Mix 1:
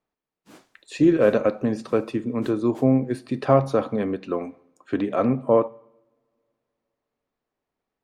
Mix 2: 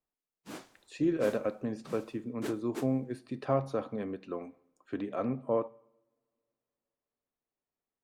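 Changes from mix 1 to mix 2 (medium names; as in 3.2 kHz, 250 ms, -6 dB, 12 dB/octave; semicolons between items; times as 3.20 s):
speech -11.5 dB; background +5.0 dB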